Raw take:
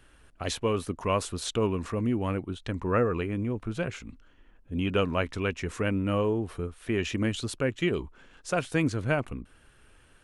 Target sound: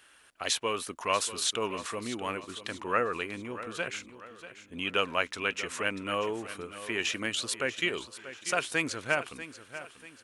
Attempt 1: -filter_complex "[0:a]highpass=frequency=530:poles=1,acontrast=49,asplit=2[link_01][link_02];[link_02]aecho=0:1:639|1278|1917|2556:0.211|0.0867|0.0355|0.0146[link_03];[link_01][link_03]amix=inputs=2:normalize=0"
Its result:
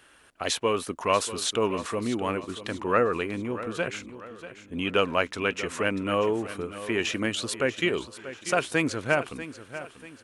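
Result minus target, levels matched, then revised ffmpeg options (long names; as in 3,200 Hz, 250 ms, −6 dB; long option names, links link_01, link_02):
500 Hz band +3.0 dB
-filter_complex "[0:a]highpass=frequency=1600:poles=1,acontrast=49,asplit=2[link_01][link_02];[link_02]aecho=0:1:639|1278|1917|2556:0.211|0.0867|0.0355|0.0146[link_03];[link_01][link_03]amix=inputs=2:normalize=0"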